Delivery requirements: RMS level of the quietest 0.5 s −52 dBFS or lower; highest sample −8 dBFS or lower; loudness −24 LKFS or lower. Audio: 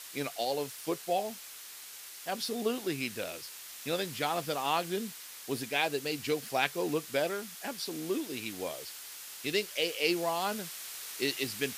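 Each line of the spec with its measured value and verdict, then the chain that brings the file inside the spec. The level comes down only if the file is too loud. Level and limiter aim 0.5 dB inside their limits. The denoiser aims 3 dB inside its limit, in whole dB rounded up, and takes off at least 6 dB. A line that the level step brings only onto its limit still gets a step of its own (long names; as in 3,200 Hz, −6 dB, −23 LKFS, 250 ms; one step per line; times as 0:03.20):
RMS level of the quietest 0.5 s −47 dBFS: out of spec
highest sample −10.5 dBFS: in spec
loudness −33.5 LKFS: in spec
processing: broadband denoise 8 dB, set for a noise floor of −47 dBFS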